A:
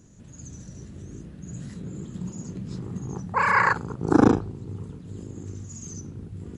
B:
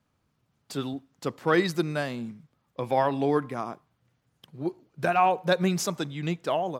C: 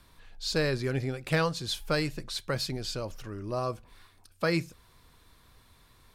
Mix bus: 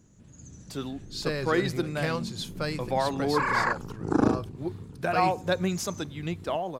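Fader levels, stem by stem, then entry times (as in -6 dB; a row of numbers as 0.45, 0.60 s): -6.0, -3.0, -3.5 dB; 0.00, 0.00, 0.70 s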